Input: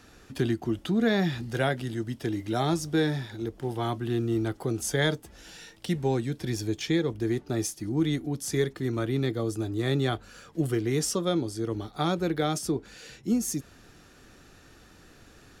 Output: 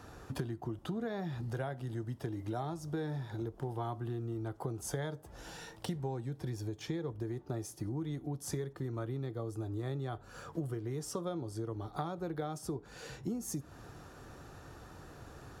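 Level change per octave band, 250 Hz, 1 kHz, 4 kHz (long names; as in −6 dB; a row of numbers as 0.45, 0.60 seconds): −12.0, −8.5, −15.5 decibels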